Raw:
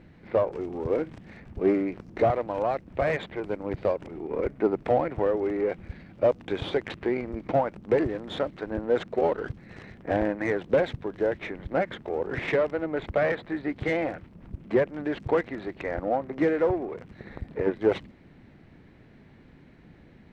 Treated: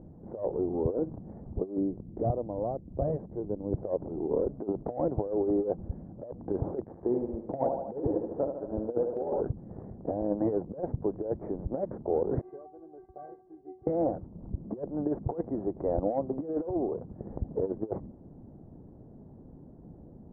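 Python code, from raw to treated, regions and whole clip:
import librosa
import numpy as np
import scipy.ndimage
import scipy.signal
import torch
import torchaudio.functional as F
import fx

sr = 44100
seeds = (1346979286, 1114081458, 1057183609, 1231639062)

y = fx.chain(x, sr, fx.peak_eq(hz=1100.0, db=-11.0, octaves=3.0),
    fx.notch(hz=2500.0, q=6.3), at=(1.77, 3.73))
y = fx.chain(y, sr, fx.echo_thinned(ms=75, feedback_pct=76, hz=230.0, wet_db=-5),
    fx.upward_expand(threshold_db=-37.0, expansion=1.5), at=(6.84, 9.41))
y = fx.chain(y, sr, fx.highpass(hz=48.0, slope=12),
    fx.stiff_resonator(f0_hz=370.0, decay_s=0.29, stiffness=0.008), at=(12.41, 13.87))
y = scipy.signal.sosfilt(scipy.signal.cheby2(4, 60, 2700.0, 'lowpass', fs=sr, output='sos'), y)
y = fx.over_compress(y, sr, threshold_db=-28.0, ratio=-0.5)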